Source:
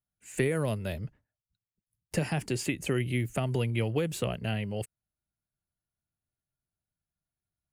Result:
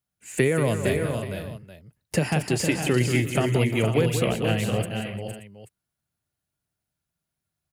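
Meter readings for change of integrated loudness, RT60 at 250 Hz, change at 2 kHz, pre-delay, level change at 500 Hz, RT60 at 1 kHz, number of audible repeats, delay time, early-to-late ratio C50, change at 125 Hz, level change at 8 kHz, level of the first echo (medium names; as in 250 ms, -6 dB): +7.0 dB, no reverb, +8.5 dB, no reverb, +8.5 dB, no reverb, 6, 184 ms, no reverb, +7.0 dB, +8.5 dB, -9.0 dB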